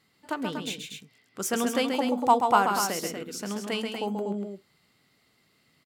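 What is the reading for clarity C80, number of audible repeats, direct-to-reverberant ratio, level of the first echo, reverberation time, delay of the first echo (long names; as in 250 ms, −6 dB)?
no reverb audible, 2, no reverb audible, −6.0 dB, no reverb audible, 133 ms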